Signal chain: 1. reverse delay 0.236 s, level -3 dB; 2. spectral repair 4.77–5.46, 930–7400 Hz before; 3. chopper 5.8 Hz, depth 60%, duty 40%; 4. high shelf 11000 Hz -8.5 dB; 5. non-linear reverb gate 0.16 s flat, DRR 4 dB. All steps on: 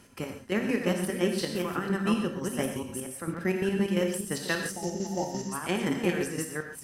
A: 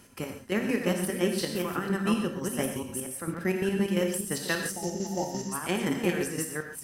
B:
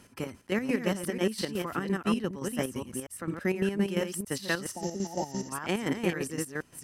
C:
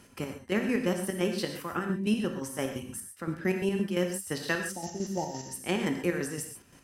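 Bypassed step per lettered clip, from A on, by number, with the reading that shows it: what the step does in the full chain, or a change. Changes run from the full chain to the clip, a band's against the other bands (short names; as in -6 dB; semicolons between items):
4, 8 kHz band +2.5 dB; 5, loudness change -1.5 LU; 1, momentary loudness spread change +1 LU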